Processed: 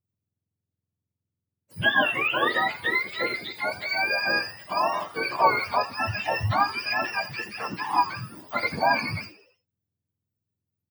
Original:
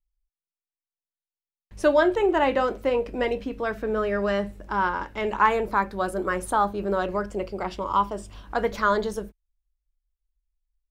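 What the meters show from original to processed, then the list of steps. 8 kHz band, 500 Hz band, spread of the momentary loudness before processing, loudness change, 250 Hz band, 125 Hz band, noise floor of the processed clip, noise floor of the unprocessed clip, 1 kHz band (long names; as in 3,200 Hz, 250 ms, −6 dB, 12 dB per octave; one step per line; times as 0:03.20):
−4.0 dB, −7.5 dB, 10 LU, 0.0 dB, −8.0 dB, +4.0 dB, below −85 dBFS, below −85 dBFS, 0.0 dB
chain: frequency axis turned over on the octave scale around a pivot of 990 Hz
echo with shifted repeats 83 ms, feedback 51%, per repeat +99 Hz, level −17 dB
level +2 dB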